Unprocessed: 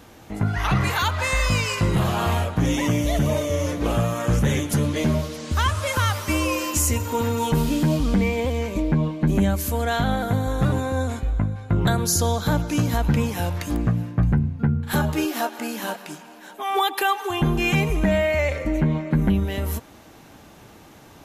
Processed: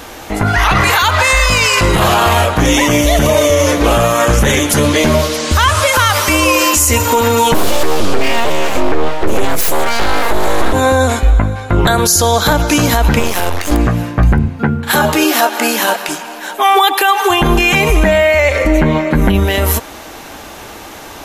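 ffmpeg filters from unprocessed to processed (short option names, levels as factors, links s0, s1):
-filter_complex "[0:a]asettb=1/sr,asplit=3[s0][s1][s2];[s0]atrim=end=7.544[s3];[s1]atrim=start=7.54:end=10.73,asetpts=PTS-STARTPTS,afade=t=in:d=0.004:c=qsin,afade=t=out:st=3.186:d=0.004:c=qsin,aeval=exprs='abs(val(0))':c=same[s4];[s2]atrim=start=10.726[s5];[s3][s4]acrossfade=d=0.004:c1=hsin:c2=qsin[s6];[s6][s5]acrossfade=d=0.004:c1=qsin:c2=hsin,asettb=1/sr,asplit=3[s7][s8][s9];[s7]atrim=end=13.194[s10];[s8]atrim=start=13.19:end=13.72,asetpts=PTS-STARTPTS,afade=t=in:d=0.004:c=qsin,afade=t=out:st=0.526:d=0.004:c=qsin,aeval=exprs='max(val(0),0)':c=same[s11];[s9]atrim=start=13.716[s12];[s10][s11]acrossfade=d=0.004:c1=hsin:c2=qsin[s13];[s13][s12]acrossfade=d=0.004:c1=qsin:c2=hsin,asettb=1/sr,asplit=3[s14][s15][s16];[s14]atrim=end=14.484[s17];[s15]atrim=start=14.48:end=16.09,asetpts=PTS-STARTPTS,afade=t=in:d=0.004:c=qsin,afade=t=out:st=1.606:d=0.004:c=qsin,highpass=120[s18];[s16]atrim=start=16.086[s19];[s17][s18]acrossfade=d=0.004:c1=hsin:c2=qsin[s20];[s20][s19]acrossfade=d=0.004:c1=qsin:c2=hsin,equalizer=f=140:t=o:w=2:g=-13,alimiter=level_in=10:limit=0.891:release=50:level=0:latency=1,volume=0.891"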